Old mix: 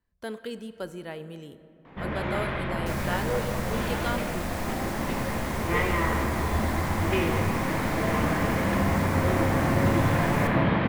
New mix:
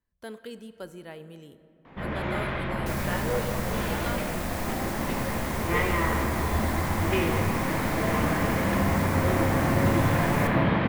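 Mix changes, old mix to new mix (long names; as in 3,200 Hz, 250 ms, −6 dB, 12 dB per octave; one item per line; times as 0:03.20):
speech −4.5 dB
master: add high-shelf EQ 11,000 Hz +5.5 dB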